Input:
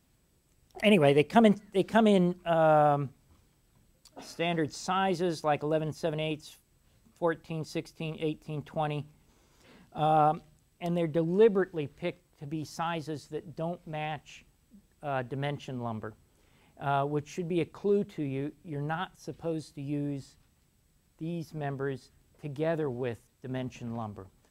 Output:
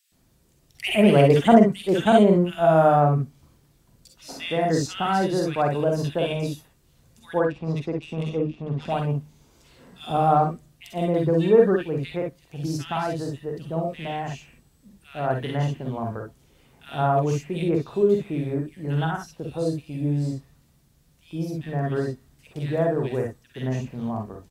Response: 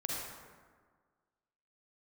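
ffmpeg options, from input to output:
-filter_complex "[0:a]asettb=1/sr,asplit=3[s0][s1][s2];[s0]atrim=end=7.414[s3];[s1]atrim=start=7.41:end=8.89,asetpts=PTS-STARTPTS,afade=t=in:d=0.004:c=qsin,afade=t=out:st=1.476:d=0.004:c=qsin,adynamicsmooth=sensitivity=6:basefreq=1800[s4];[s2]atrim=start=8.886[s5];[s3][s4]acrossfade=d=0.004:c1=hsin:c2=qsin[s6];[s6][s5]acrossfade=d=0.004:c1=qsin:c2=hsin,acrossover=split=2000[s7][s8];[s7]adelay=120[s9];[s9][s8]amix=inputs=2:normalize=0[s10];[1:a]atrim=start_sample=2205,atrim=end_sample=3087[s11];[s10][s11]afir=irnorm=-1:irlink=0,volume=2.24"

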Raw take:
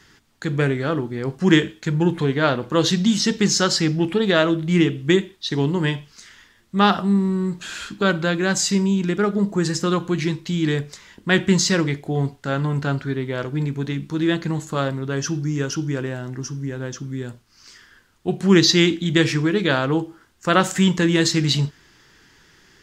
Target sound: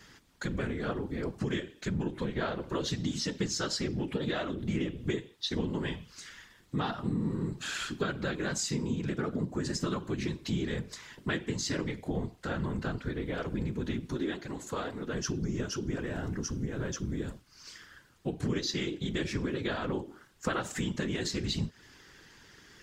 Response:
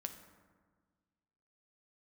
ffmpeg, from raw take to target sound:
-filter_complex "[0:a]acompressor=threshold=0.0398:ratio=6,asettb=1/sr,asplit=3[s0][s1][s2];[s0]atrim=end=14.164[s3];[s1]atrim=start=14.16:end=15.13,asetpts=PTS-STARTPTS,afade=t=in:d=0.004:c=qsin,afade=t=out:st=0.966:d=0.004:c=qsin,highpass=230[s4];[s2]atrim=start=15.126[s5];[s3][s4]acrossfade=d=0.004:c1=hsin:c2=qsin[s6];[s6][s5]acrossfade=d=0.004:c1=qsin:c2=hsin,afftfilt=real='hypot(re,im)*cos(2*PI*random(0))':imag='hypot(re,im)*sin(2*PI*random(1))':win_size=512:overlap=0.75,volume=1.5"

